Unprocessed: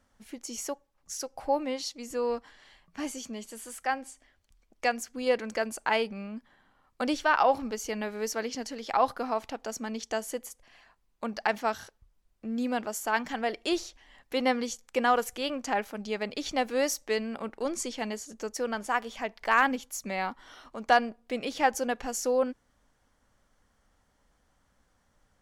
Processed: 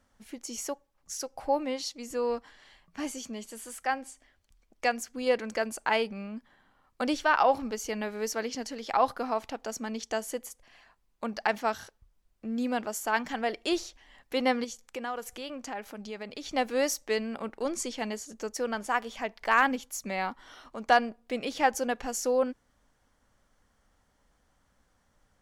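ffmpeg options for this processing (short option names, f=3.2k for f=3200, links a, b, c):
-filter_complex "[0:a]asettb=1/sr,asplit=3[a][b][c];[a]atrim=end=14.644[d];[b]atrim=start=14.64:end=16.53,asetpts=PTS-STARTPTS,afade=t=in:d=0.004:c=qsin,afade=t=out:st=1.886:d=0.004:c=qsin,acompressor=threshold=-40dB:ratio=2:attack=3.2:release=140:knee=1:detection=peak[e];[c]atrim=start=16.526[f];[d][e]acrossfade=d=0.004:c1=hsin:c2=qsin[g];[g][f]acrossfade=d=0.004:c1=qsin:c2=hsin"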